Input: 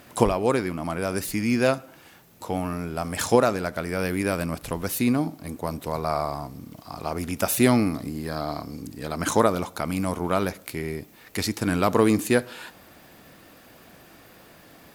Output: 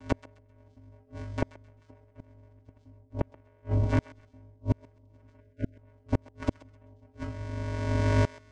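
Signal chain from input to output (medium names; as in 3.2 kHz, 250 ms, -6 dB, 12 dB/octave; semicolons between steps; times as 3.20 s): octave divider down 2 oct, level +3 dB; recorder AGC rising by 13 dB/s; in parallel at -8 dB: saturation -14 dBFS, distortion -13 dB; on the sum: vocoder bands 4, square 86 Hz; simulated room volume 2100 m³, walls furnished, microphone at 2.5 m; granular stretch 0.57×, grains 42 ms; inverted gate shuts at -12 dBFS, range -40 dB; spectral selection erased 5.40–5.77 s, 650–1400 Hz; on a send: thinning echo 131 ms, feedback 27%, high-pass 1 kHz, level -16 dB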